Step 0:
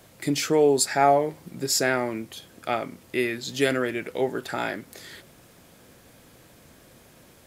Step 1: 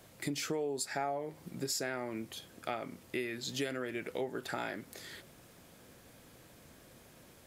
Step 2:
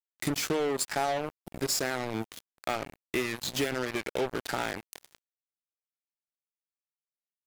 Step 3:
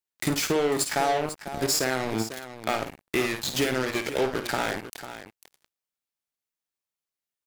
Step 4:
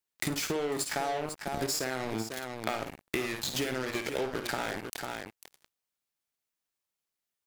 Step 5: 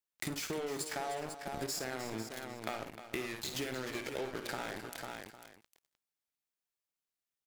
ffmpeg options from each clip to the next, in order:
ffmpeg -i in.wav -af "acompressor=threshold=-28dB:ratio=6,volume=-5dB" out.wav
ffmpeg -i in.wav -af "acrusher=bits=5:mix=0:aa=0.5,volume=6dB" out.wav
ffmpeg -i in.wav -af "aecho=1:1:54|497:0.355|0.251,volume=4dB" out.wav
ffmpeg -i in.wav -af "acompressor=threshold=-31dB:ratio=6,volume=2dB" out.wav
ffmpeg -i in.wav -af "aecho=1:1:306:0.266,volume=-6.5dB" out.wav

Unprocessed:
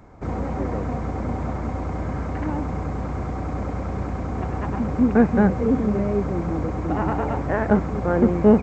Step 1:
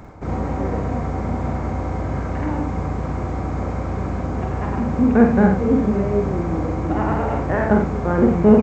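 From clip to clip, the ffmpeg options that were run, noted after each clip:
ffmpeg -i in.wav -af "areverse,acompressor=mode=upward:threshold=-25dB:ratio=2.5,areverse,aecho=1:1:46.65|87.46:0.631|0.355,volume=1dB" out.wav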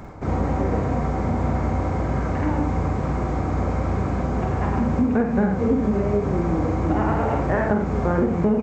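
ffmpeg -i in.wav -af "acompressor=threshold=-18dB:ratio=10,flanger=delay=5:depth=8.4:regen=-68:speed=0.93:shape=sinusoidal,volume=6dB" out.wav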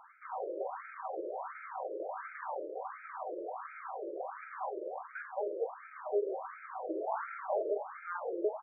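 ffmpeg -i in.wav -af "afftfilt=real='re*between(b*sr/1024,430*pow(1800/430,0.5+0.5*sin(2*PI*1.4*pts/sr))/1.41,430*pow(1800/430,0.5+0.5*sin(2*PI*1.4*pts/sr))*1.41)':imag='im*between(b*sr/1024,430*pow(1800/430,0.5+0.5*sin(2*PI*1.4*pts/sr))/1.41,430*pow(1800/430,0.5+0.5*sin(2*PI*1.4*pts/sr))*1.41)':win_size=1024:overlap=0.75,volume=-7dB" out.wav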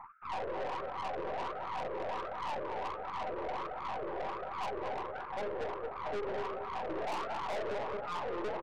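ffmpeg -i in.wav -filter_complex "[0:a]highshelf=frequency=1500:width_type=q:width=3:gain=-12,asplit=2[link_01][link_02];[link_02]adelay=224,lowpass=frequency=1400:poles=1,volume=-5.5dB,asplit=2[link_03][link_04];[link_04]adelay=224,lowpass=frequency=1400:poles=1,volume=0.27,asplit=2[link_05][link_06];[link_06]adelay=224,lowpass=frequency=1400:poles=1,volume=0.27,asplit=2[link_07][link_08];[link_08]adelay=224,lowpass=frequency=1400:poles=1,volume=0.27[link_09];[link_01][link_03][link_05][link_07][link_09]amix=inputs=5:normalize=0,aeval=exprs='(tanh(89.1*val(0)+0.55)-tanh(0.55))/89.1':channel_layout=same,volume=4.5dB" out.wav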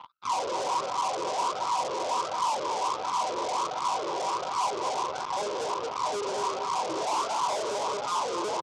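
ffmpeg -i in.wav -af "aeval=exprs='0.0299*(cos(1*acos(clip(val(0)/0.0299,-1,1)))-cos(1*PI/2))+0.00596*(cos(2*acos(clip(val(0)/0.0299,-1,1)))-cos(2*PI/2))+0.000531*(cos(6*acos(clip(val(0)/0.0299,-1,1)))-cos(6*PI/2))+0.00422*(cos(7*acos(clip(val(0)/0.0299,-1,1)))-cos(7*PI/2))+0.000422*(cos(8*acos(clip(val(0)/0.0299,-1,1)))-cos(8*PI/2))':channel_layout=same,highpass=140,equalizer=frequency=210:width_type=q:width=4:gain=-4,equalizer=frequency=990:width_type=q:width=4:gain=9,equalizer=frequency=1800:width_type=q:width=4:gain=-9,equalizer=frequency=3400:width_type=q:width=4:gain=5,lowpass=frequency=7800:width=0.5412,lowpass=frequency=7800:width=1.3066,aexciter=amount=2.5:drive=6.9:freq=4900,volume=9dB" out.wav

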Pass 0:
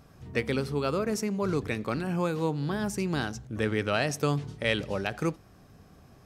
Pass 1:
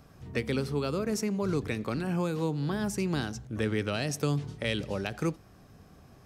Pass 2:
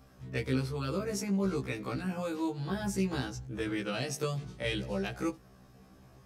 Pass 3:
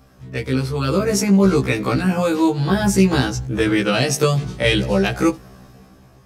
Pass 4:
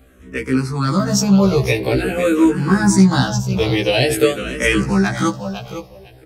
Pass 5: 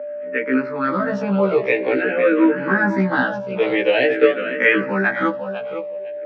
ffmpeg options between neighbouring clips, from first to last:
ffmpeg -i in.wav -filter_complex "[0:a]acrossover=split=410|3000[link_01][link_02][link_03];[link_02]acompressor=threshold=-34dB:ratio=6[link_04];[link_01][link_04][link_03]amix=inputs=3:normalize=0" out.wav
ffmpeg -i in.wav -af "afftfilt=real='re*1.73*eq(mod(b,3),0)':imag='im*1.73*eq(mod(b,3),0)':win_size=2048:overlap=0.75" out.wav
ffmpeg -i in.wav -af "dynaudnorm=framelen=170:gausssize=9:maxgain=9dB,volume=7.5dB" out.wav
ffmpeg -i in.wav -filter_complex "[0:a]asplit=2[link_01][link_02];[link_02]aecho=0:1:504|1008:0.316|0.0474[link_03];[link_01][link_03]amix=inputs=2:normalize=0,asplit=2[link_04][link_05];[link_05]afreqshift=-0.47[link_06];[link_04][link_06]amix=inputs=2:normalize=1,volume=4.5dB" out.wav
ffmpeg -i in.wav -af "aeval=exprs='val(0)+0.0447*sin(2*PI*590*n/s)':channel_layout=same,highpass=frequency=270:width=0.5412,highpass=frequency=270:width=1.3066,equalizer=frequency=360:width_type=q:width=4:gain=-8,equalizer=frequency=720:width_type=q:width=4:gain=-7,equalizer=frequency=1100:width_type=q:width=4:gain=-6,equalizer=frequency=1700:width_type=q:width=4:gain=4,lowpass=frequency=2300:width=0.5412,lowpass=frequency=2300:width=1.3066,volume=3.5dB" out.wav

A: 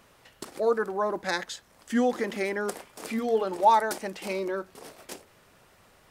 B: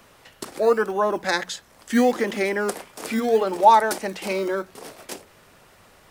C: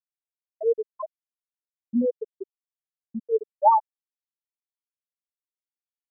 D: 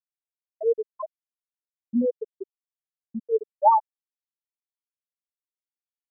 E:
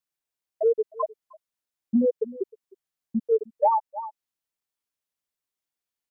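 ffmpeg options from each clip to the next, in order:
ffmpeg -i in.wav -filter_complex "[0:a]bandreject=frequency=60:width_type=h:width=6,bandreject=frequency=120:width_type=h:width=6,bandreject=frequency=180:width_type=h:width=6,acrossover=split=270|1200|2500[link_01][link_02][link_03][link_04];[link_01]acrusher=samples=20:mix=1:aa=0.000001:lfo=1:lforange=12:lforate=0.74[link_05];[link_05][link_02][link_03][link_04]amix=inputs=4:normalize=0,volume=6dB" out.wav
ffmpeg -i in.wav -af "afftfilt=real='re*gte(hypot(re,im),1)':imag='im*gte(hypot(re,im),1)':win_size=1024:overlap=0.75,agate=range=-33dB:threshold=-44dB:ratio=3:detection=peak,volume=-3.5dB" out.wav
ffmpeg -i in.wav -af anull out.wav
ffmpeg -i in.wav -af "aecho=1:1:309:0.0668,acompressor=threshold=-24dB:ratio=12,volume=6.5dB" out.wav

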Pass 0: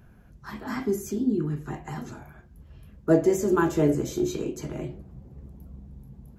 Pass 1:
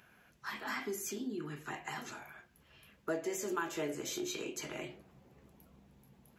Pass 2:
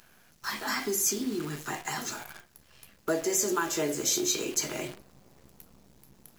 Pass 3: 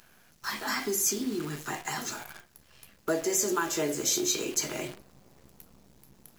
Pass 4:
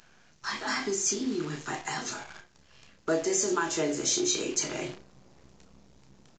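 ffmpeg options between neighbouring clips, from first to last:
ffmpeg -i in.wav -af "highpass=frequency=1100:poles=1,equalizer=frequency=2600:width=1.1:gain=6.5,acompressor=threshold=-38dB:ratio=2.5,volume=1dB" out.wav
ffmpeg -i in.wav -af "highshelf=frequency=3800:width_type=q:width=1.5:gain=6.5,acrusher=bits=9:dc=4:mix=0:aa=0.000001,volume=7.5dB" out.wav
ffmpeg -i in.wav -af anull out.wav
ffmpeg -i in.wav -filter_complex "[0:a]asplit=2[link_01][link_02];[link_02]adelay=31,volume=-8.5dB[link_03];[link_01][link_03]amix=inputs=2:normalize=0,aresample=16000,aresample=44100" out.wav

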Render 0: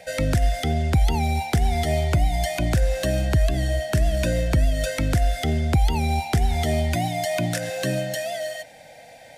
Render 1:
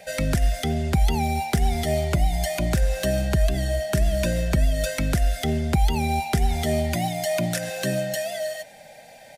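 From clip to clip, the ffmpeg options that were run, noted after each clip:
ffmpeg -i in.wav -af "highshelf=frequency=12000:gain=6.5,aecho=1:1:5:0.41,volume=-1dB" out.wav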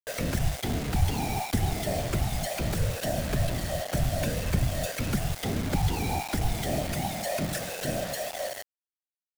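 ffmpeg -i in.wav -af "afftfilt=real='hypot(re,im)*cos(2*PI*random(0))':imag='hypot(re,im)*sin(2*PI*random(1))':win_size=512:overlap=0.75,acrusher=bits=5:mix=0:aa=0.000001" out.wav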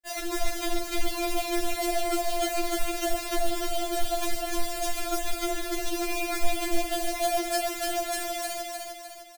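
ffmpeg -i in.wav -af "aecho=1:1:303|606|909|1212|1515|1818:0.668|0.321|0.154|0.0739|0.0355|0.017,afftfilt=real='re*4*eq(mod(b,16),0)':imag='im*4*eq(mod(b,16),0)':win_size=2048:overlap=0.75,volume=3.5dB" out.wav

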